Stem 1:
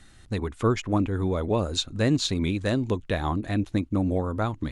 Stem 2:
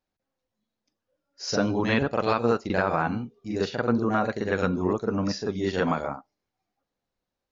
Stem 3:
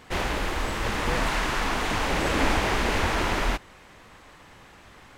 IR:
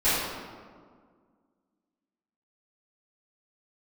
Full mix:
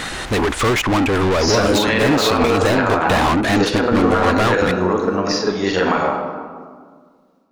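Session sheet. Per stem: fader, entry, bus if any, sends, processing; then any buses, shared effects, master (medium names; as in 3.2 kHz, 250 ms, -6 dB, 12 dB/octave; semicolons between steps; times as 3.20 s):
+2.0 dB, 0.00 s, no send, overdrive pedal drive 37 dB, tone 4.2 kHz, clips at -12 dBFS
+1.0 dB, 0.00 s, send -17 dB, single-diode clipper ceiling -15 dBFS; bass shelf 300 Hz -11.5 dB; level rider gain up to 11 dB
-11.5 dB, 0.00 s, no send, level flattener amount 100%; auto duck -21 dB, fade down 0.75 s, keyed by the second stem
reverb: on, RT60 1.8 s, pre-delay 4 ms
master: peak limiter -6 dBFS, peak gain reduction 7.5 dB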